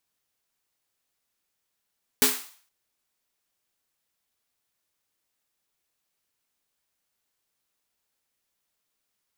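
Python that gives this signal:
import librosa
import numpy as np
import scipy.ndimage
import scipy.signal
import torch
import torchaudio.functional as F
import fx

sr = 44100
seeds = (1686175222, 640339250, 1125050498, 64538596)

y = fx.drum_snare(sr, seeds[0], length_s=0.47, hz=260.0, second_hz=420.0, noise_db=6.0, noise_from_hz=770.0, decay_s=0.28, noise_decay_s=0.48)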